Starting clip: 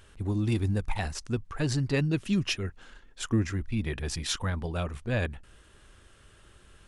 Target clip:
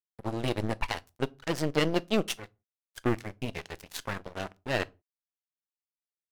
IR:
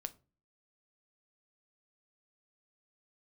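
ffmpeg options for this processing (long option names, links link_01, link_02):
-filter_complex "[0:a]aemphasis=mode=reproduction:type=50fm,aeval=exprs='0.178*(cos(1*acos(clip(val(0)/0.178,-1,1)))-cos(1*PI/2))+0.0398*(cos(4*acos(clip(val(0)/0.178,-1,1)))-cos(4*PI/2))+0.00891*(cos(6*acos(clip(val(0)/0.178,-1,1)))-cos(6*PI/2))+0.0178*(cos(7*acos(clip(val(0)/0.178,-1,1)))-cos(7*PI/2))':channel_layout=same,bass=frequency=250:gain=-10,treble=frequency=4000:gain=-3,aeval=exprs='sgn(val(0))*max(abs(val(0))-0.00596,0)':channel_layout=same,asplit=2[link_01][link_02];[1:a]atrim=start_sample=2205,afade=type=out:start_time=0.25:duration=0.01,atrim=end_sample=11466,highshelf=frequency=4300:gain=10[link_03];[link_02][link_03]afir=irnorm=-1:irlink=0,volume=-1.5dB[link_04];[link_01][link_04]amix=inputs=2:normalize=0,asetrate=48000,aresample=44100"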